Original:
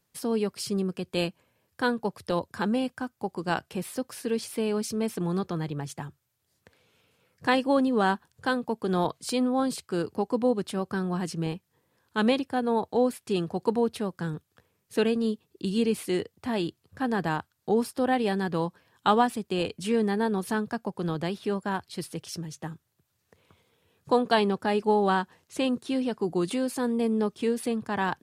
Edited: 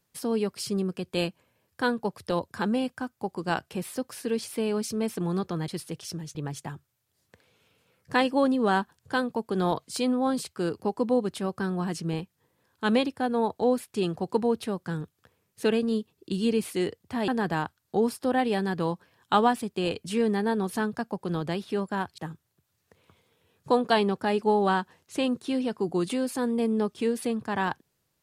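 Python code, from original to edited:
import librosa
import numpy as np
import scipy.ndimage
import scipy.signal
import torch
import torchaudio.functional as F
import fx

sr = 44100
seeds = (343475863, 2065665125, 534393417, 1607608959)

y = fx.edit(x, sr, fx.cut(start_s=16.61, length_s=0.41),
    fx.move(start_s=21.92, length_s=0.67, to_s=5.68), tone=tone)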